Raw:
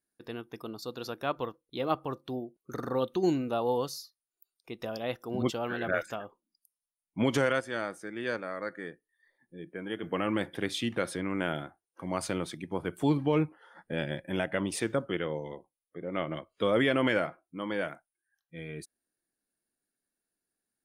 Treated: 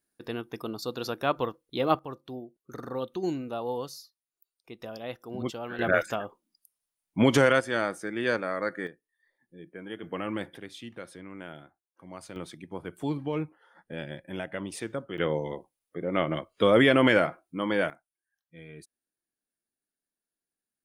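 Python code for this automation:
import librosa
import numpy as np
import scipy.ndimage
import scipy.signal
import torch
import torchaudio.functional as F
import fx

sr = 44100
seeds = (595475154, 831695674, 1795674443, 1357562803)

y = fx.gain(x, sr, db=fx.steps((0.0, 5.0), (1.99, -3.5), (5.79, 6.0), (8.87, -3.0), (10.58, -11.0), (12.36, -4.5), (15.18, 6.0), (17.9, -5.5)))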